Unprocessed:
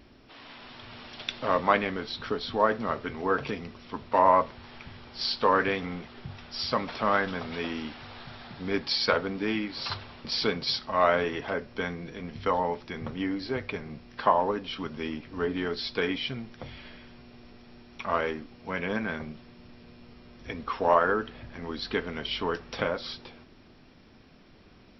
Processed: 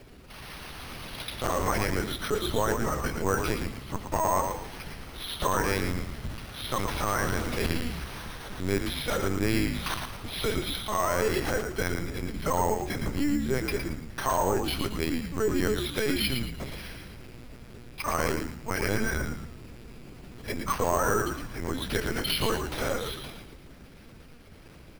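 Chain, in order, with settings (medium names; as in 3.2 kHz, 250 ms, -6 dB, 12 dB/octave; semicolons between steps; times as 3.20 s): peaking EQ 710 Hz -3.5 dB 0.77 oct; peak limiter -20.5 dBFS, peak gain reduction 11.5 dB; Chebyshev shaper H 5 -27 dB, 7 -43 dB, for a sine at -20.5 dBFS; LPC vocoder at 8 kHz pitch kept; sample-and-hold 6×; frequency-shifting echo 113 ms, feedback 34%, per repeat -70 Hz, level -6 dB; trim +4 dB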